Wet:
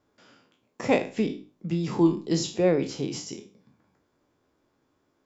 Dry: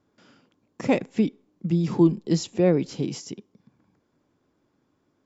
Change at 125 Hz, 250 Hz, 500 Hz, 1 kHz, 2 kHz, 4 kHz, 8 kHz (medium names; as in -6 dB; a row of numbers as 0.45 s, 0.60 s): -5.0 dB, -3.0 dB, -0.5 dB, +1.5 dB, +2.0 dB, +2.0 dB, no reading